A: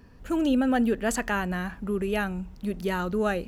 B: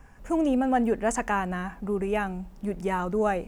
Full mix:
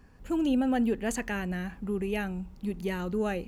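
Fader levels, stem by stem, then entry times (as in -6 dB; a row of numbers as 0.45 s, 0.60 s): -5.5 dB, -10.0 dB; 0.00 s, 0.00 s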